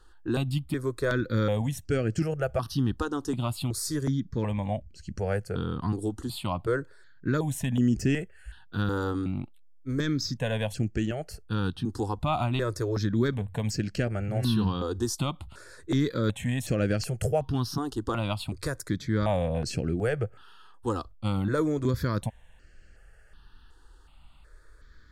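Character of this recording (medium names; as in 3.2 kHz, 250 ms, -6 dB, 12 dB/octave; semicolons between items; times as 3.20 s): notches that jump at a steady rate 2.7 Hz 610–3600 Hz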